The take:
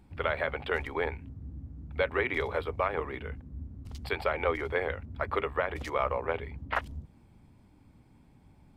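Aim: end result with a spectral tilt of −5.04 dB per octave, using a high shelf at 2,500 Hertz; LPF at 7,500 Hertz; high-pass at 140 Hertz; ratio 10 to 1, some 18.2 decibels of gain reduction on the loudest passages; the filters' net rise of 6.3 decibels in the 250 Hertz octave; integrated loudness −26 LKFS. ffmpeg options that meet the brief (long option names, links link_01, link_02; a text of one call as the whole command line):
ffmpeg -i in.wav -af "highpass=140,lowpass=7500,equalizer=frequency=250:width_type=o:gain=9,highshelf=frequency=2500:gain=-3.5,acompressor=threshold=-42dB:ratio=10,volume=21.5dB" out.wav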